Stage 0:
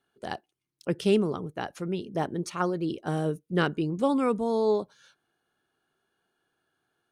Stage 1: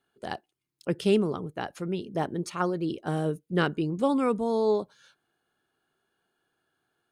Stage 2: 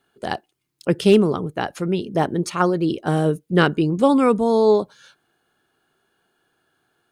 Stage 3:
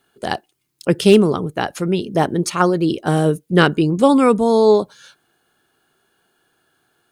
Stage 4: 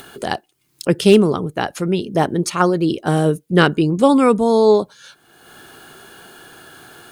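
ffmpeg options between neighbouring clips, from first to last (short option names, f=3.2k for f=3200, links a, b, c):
-af "bandreject=f=5.8k:w=15"
-af "asoftclip=type=hard:threshold=-14dB,volume=9dB"
-af "highshelf=f=4.7k:g=5.5,volume=3dB"
-af "acompressor=mode=upward:threshold=-23dB:ratio=2.5"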